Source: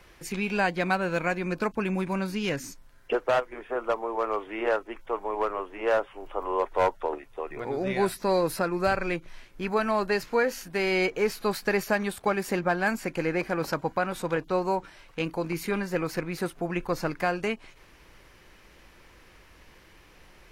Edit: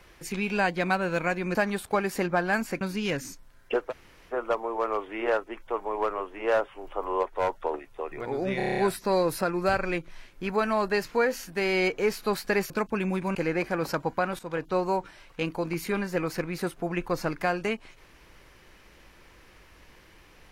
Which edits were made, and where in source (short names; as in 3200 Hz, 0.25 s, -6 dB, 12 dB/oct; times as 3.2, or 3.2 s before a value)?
1.55–2.2 swap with 11.88–13.14
3.29–3.7 room tone, crossfade 0.06 s
6.62–6.89 gain -3.5 dB
7.96 stutter 0.03 s, 8 plays
14.18–14.47 fade in, from -12.5 dB